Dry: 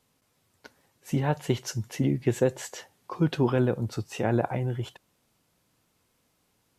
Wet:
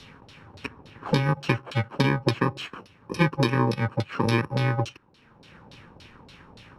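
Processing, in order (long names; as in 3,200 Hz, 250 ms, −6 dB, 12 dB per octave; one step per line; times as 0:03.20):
samples in bit-reversed order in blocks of 64 samples
auto-filter low-pass saw down 3.5 Hz 580–4,300 Hz
multiband upward and downward compressor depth 70%
level +4 dB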